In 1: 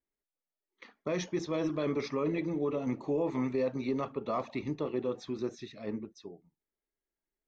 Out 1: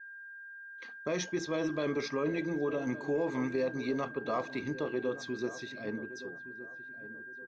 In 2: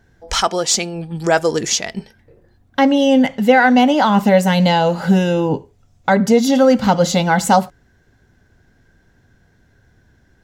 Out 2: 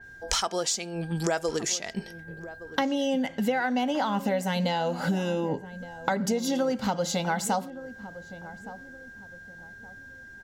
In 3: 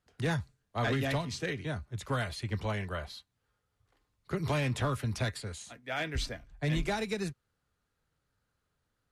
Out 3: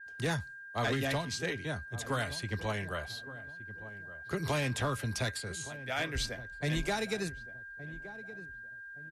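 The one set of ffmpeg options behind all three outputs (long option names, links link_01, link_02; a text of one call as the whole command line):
ffmpeg -i in.wav -filter_complex "[0:a]bass=frequency=250:gain=-3,treble=frequency=4000:gain=6,aeval=exprs='val(0)+0.00562*sin(2*PI*1600*n/s)':channel_layout=same,acompressor=threshold=-25dB:ratio=6,asplit=2[link_01][link_02];[link_02]adelay=1168,lowpass=frequency=860:poles=1,volume=-13.5dB,asplit=2[link_03][link_04];[link_04]adelay=1168,lowpass=frequency=860:poles=1,volume=0.36,asplit=2[link_05][link_06];[link_06]adelay=1168,lowpass=frequency=860:poles=1,volume=0.36[link_07];[link_01][link_03][link_05][link_07]amix=inputs=4:normalize=0,adynamicequalizer=threshold=0.00631:dfrequency=4000:dqfactor=0.7:tfrequency=4000:tqfactor=0.7:attack=5:release=100:ratio=0.375:range=2:mode=cutabove:tftype=highshelf" out.wav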